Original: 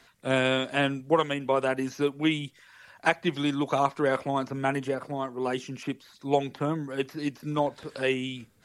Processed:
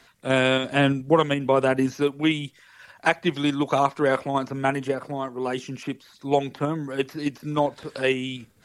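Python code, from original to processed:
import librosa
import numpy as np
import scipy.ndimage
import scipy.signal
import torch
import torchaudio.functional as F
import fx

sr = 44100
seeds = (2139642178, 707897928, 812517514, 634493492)

p1 = fx.low_shelf(x, sr, hz=320.0, db=7.0, at=(0.64, 1.97))
p2 = fx.level_steps(p1, sr, step_db=13)
y = p1 + F.gain(torch.from_numpy(p2), -2.0).numpy()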